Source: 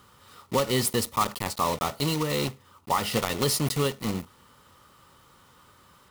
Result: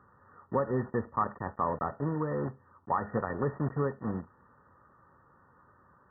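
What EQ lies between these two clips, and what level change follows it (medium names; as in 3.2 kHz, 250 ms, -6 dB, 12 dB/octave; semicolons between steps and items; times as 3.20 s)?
high-pass 48 Hz; brick-wall FIR low-pass 1.9 kHz; -4.0 dB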